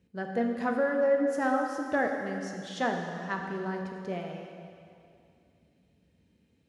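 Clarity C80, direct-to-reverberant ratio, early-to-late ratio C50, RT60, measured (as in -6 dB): 4.5 dB, 2.0 dB, 3.5 dB, 2.5 s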